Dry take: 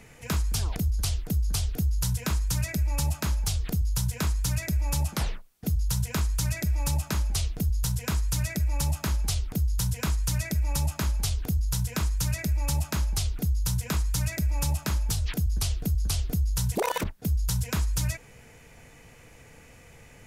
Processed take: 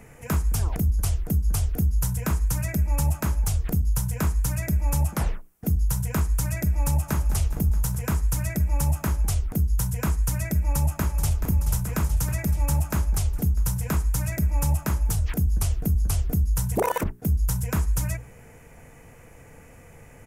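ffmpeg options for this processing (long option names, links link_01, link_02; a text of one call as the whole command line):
ffmpeg -i in.wav -filter_complex "[0:a]asplit=2[link_01][link_02];[link_02]afade=type=in:start_time=6.87:duration=0.01,afade=type=out:start_time=7.29:duration=0.01,aecho=0:1:210|420|630|840|1050|1260|1470|1680|1890|2100:0.251189|0.175832|0.123082|0.0861577|0.0603104|0.0422173|0.0295521|0.0206865|0.0144805|0.0101364[link_03];[link_01][link_03]amix=inputs=2:normalize=0,asplit=2[link_04][link_05];[link_05]afade=type=in:start_time=10.56:duration=0.01,afade=type=out:start_time=11.41:duration=0.01,aecho=0:1:430|860|1290|1720|2150|2580|3010|3440|3870|4300|4730|5160:0.334965|0.251224|0.188418|0.141314|0.105985|0.0794889|0.0596167|0.0447125|0.0335344|0.0251508|0.0188631|0.0141473[link_06];[link_04][link_06]amix=inputs=2:normalize=0,equalizer=frequency=4000:width=1:gain=-14,bandreject=frequency=60:width_type=h:width=6,bandreject=frequency=120:width_type=h:width=6,bandreject=frequency=180:width_type=h:width=6,bandreject=frequency=240:width_type=h:width=6,bandreject=frequency=300:width_type=h:width=6,bandreject=frequency=360:width_type=h:width=6,bandreject=frequency=420:width_type=h:width=6,volume=4.5dB" out.wav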